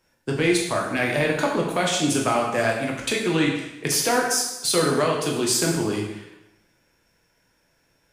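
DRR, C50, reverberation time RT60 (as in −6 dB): −1.5 dB, 3.5 dB, 0.95 s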